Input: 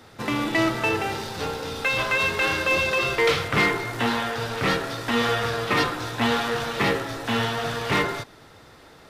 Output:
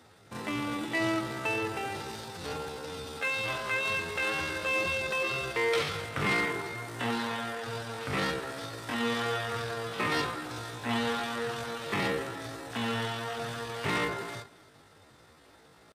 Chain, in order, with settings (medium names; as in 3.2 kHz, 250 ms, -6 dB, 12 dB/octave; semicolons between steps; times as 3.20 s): high-pass 53 Hz 12 dB/octave; peaking EQ 8.7 kHz +6.5 dB 0.33 oct; tempo 0.57×; on a send: delay 263 ms -21 dB; on the sum: trim -8 dB